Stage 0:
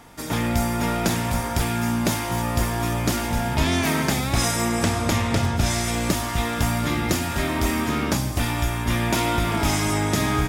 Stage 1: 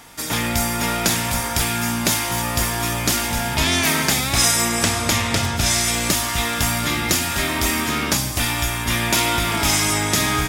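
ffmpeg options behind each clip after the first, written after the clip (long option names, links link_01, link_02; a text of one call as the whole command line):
ffmpeg -i in.wav -af "tiltshelf=frequency=1400:gain=-5.5,volume=4dB" out.wav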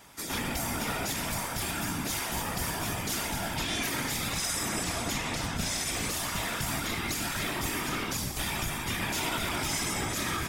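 ffmpeg -i in.wav -af "alimiter=limit=-11.5dB:level=0:latency=1:release=66,afftfilt=real='hypot(re,im)*cos(2*PI*random(0))':imag='hypot(re,im)*sin(2*PI*random(1))':win_size=512:overlap=0.75,volume=-3.5dB" out.wav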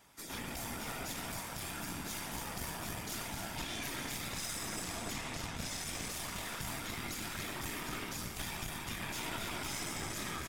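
ffmpeg -i in.wav -af "aecho=1:1:289:0.447,aeval=exprs='(tanh(11.2*val(0)+0.75)-tanh(0.75))/11.2':channel_layout=same,volume=-5.5dB" out.wav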